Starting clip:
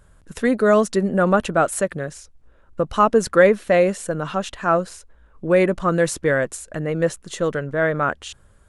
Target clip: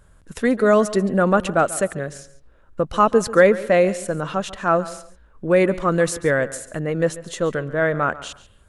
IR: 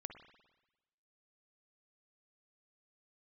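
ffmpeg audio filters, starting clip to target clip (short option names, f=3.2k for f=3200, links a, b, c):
-filter_complex "[0:a]asplit=2[a][b];[1:a]atrim=start_sample=2205,afade=t=out:st=0.25:d=0.01,atrim=end_sample=11466,adelay=140[c];[b][c]afir=irnorm=-1:irlink=0,volume=-12dB[d];[a][d]amix=inputs=2:normalize=0"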